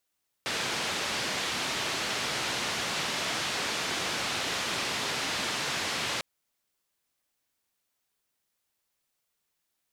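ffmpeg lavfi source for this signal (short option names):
-f lavfi -i "anoisesrc=c=white:d=5.75:r=44100:seed=1,highpass=f=100,lowpass=f=4400,volume=-19.9dB"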